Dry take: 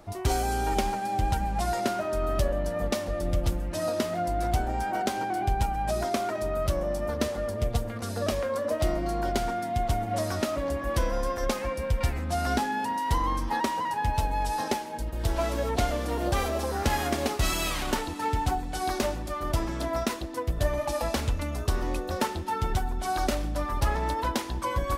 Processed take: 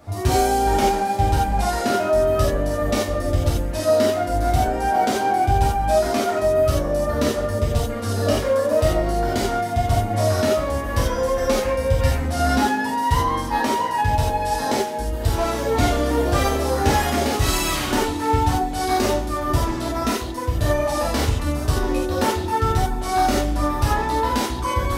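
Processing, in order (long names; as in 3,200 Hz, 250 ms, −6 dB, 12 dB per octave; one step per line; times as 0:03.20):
reverb whose tail is shaped and stops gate 110 ms flat, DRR −6.5 dB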